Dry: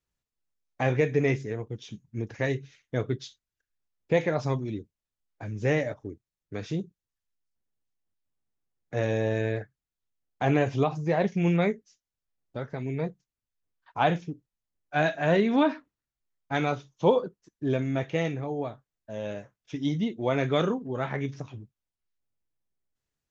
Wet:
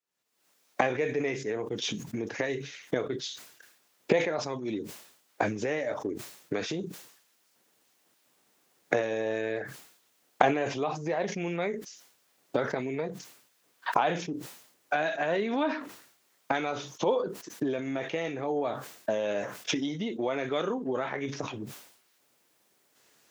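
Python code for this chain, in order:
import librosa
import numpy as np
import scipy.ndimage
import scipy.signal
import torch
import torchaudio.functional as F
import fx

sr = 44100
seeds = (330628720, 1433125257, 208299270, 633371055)

y = fx.recorder_agc(x, sr, target_db=-15.0, rise_db_per_s=64.0, max_gain_db=30)
y = scipy.signal.sosfilt(scipy.signal.butter(2, 310.0, 'highpass', fs=sr, output='sos'), y)
y = fx.sustainer(y, sr, db_per_s=82.0)
y = y * 10.0 ** (-4.5 / 20.0)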